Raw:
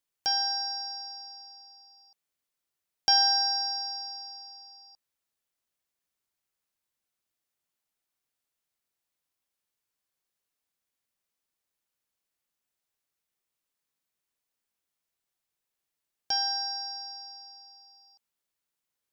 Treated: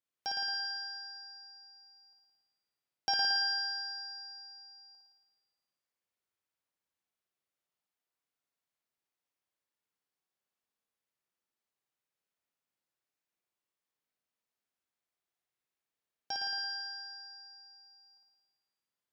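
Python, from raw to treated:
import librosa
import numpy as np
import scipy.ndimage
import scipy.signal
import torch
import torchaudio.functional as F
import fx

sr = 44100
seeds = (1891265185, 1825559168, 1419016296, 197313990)

p1 = fx.highpass(x, sr, hz=97.0, slope=6)
p2 = fx.high_shelf(p1, sr, hz=4200.0, db=-9.0)
p3 = p2 + fx.room_flutter(p2, sr, wall_m=9.6, rt60_s=1.2, dry=0)
y = p3 * librosa.db_to_amplitude(-5.0)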